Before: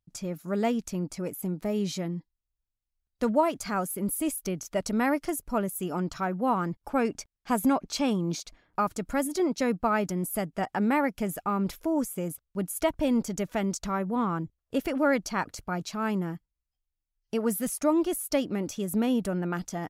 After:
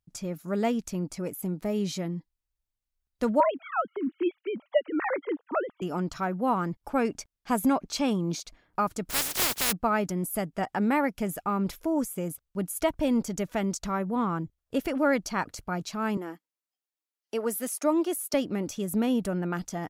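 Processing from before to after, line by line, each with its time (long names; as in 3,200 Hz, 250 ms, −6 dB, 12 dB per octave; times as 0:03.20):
0:03.40–0:05.82: three sine waves on the formant tracks
0:09.09–0:09.71: compressing power law on the bin magnitudes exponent 0.13
0:16.17–0:18.34: high-pass filter 270 Hz 24 dB per octave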